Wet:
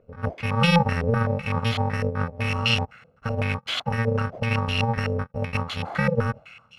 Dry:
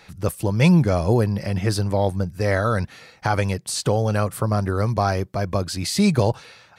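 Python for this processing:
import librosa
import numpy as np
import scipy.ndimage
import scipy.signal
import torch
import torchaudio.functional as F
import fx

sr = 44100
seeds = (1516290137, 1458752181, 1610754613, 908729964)

y = fx.bit_reversed(x, sr, seeds[0], block=128)
y = 10.0 ** (-10.5 / 20.0) * np.tanh(y / 10.0 ** (-10.5 / 20.0))
y = fx.filter_held_lowpass(y, sr, hz=7.9, low_hz=490.0, high_hz=3100.0)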